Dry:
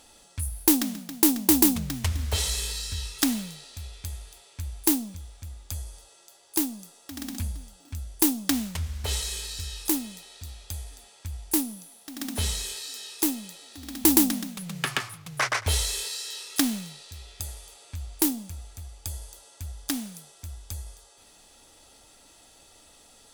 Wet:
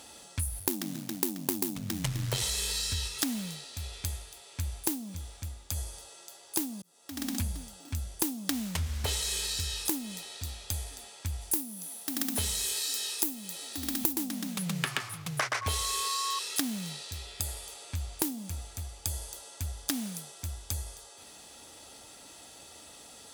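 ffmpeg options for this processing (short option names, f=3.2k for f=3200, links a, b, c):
-filter_complex "[0:a]asettb=1/sr,asplit=3[a][b][c];[a]atrim=end=0.594[d];[b]atrim=start=0.59:end=2.42,asetpts=PTS-STARTPTS,afade=t=in:d=0.004:c=qsin,afade=t=out:st=1.826:d=0.004:c=qsin,aeval=exprs='val(0)*sin(2*PI*47*n/s)':c=same[e];[c]atrim=start=2.416[f];[d][e]acrossfade=d=0.004:c1=hsin:c2=qsin[g];[g][f]acrossfade=d=0.004:c1=qsin:c2=hsin,asplit=3[h][i][j];[h]afade=t=out:st=3.07:d=0.02[k];[i]tremolo=f=1.5:d=0.31,afade=t=in:st=3.07:d=0.02,afade=t=out:st=5.76:d=0.02[l];[j]afade=t=in:st=5.76:d=0.02[m];[k][l][m]amix=inputs=3:normalize=0,asettb=1/sr,asplit=3[n][o][p];[n]atrim=end=11.414[q];[o]atrim=start=11.41:end=14.13,asetpts=PTS-STARTPTS,afade=t=in:d=0.004:c=qsin,afade=t=out:st=2.716:d=0.004:c=qsin,highshelf=f=10k:g=10[r];[p]atrim=start=14.126[s];[q][r]acrossfade=d=0.004:c1=hsin:c2=qsin[t];[t][s]acrossfade=d=0.004:c1=qsin:c2=hsin,asettb=1/sr,asplit=3[u][v][w];[u]atrim=end=15.614[x];[v]atrim=start=15.61:end=16.39,asetpts=PTS-STARTPTS,afade=t=in:d=0.004:c=qsin,afade=t=out:st=0.776:d=0.004:c=qsin,aeval=exprs='val(0)+0.0224*sin(2*PI*1100*n/s)':c=same[y];[w]atrim=start=16.386[z];[x][y]acrossfade=d=0.004:c1=hsin:c2=qsin[aa];[aa][z]acrossfade=d=0.004:c1=qsin:c2=hsin,asettb=1/sr,asplit=3[ab][ac][ad];[ab]atrim=end=17.274[ae];[ac]atrim=start=17.27:end=17.67,asetpts=PTS-STARTPTS,afade=t=in:d=0.004:c=qsin,afade=t=out:st=0.396:d=0.004:c=qsin,bandreject=f=6.1k:w=12[af];[ad]atrim=start=17.666[ag];[ae][af]acrossfade=d=0.004:c1=hsin:c2=qsin[ah];[ah][ag]acrossfade=d=0.004:c1=qsin:c2=hsin,asplit=2[ai][aj];[ai]atrim=end=6.82,asetpts=PTS-STARTPTS,afade=t=out:st=6.816:d=0.004:c=hsin[ak];[aj]atrim=start=6.82,asetpts=PTS-STARTPTS,afade=t=in:d=0.6[al];[ak][al]concat=n=2:v=0:a=1,highpass=76,acompressor=threshold=-32dB:ratio=8,volume=4.5dB"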